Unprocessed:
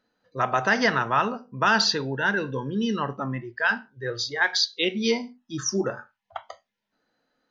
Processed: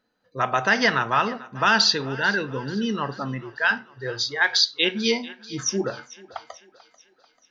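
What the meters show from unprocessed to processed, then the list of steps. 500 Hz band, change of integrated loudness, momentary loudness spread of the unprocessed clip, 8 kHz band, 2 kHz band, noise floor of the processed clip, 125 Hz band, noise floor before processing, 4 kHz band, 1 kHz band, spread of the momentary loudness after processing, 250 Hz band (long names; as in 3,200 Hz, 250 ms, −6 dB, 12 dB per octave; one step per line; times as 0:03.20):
0.0 dB, +2.0 dB, 14 LU, can't be measured, +2.0 dB, −67 dBFS, 0.0 dB, −83 dBFS, +4.0 dB, +1.0 dB, 15 LU, 0.0 dB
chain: dynamic equaliser 3,300 Hz, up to +5 dB, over −34 dBFS, Q 0.76
feedback echo with a high-pass in the loop 440 ms, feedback 53%, high-pass 360 Hz, level −19 dB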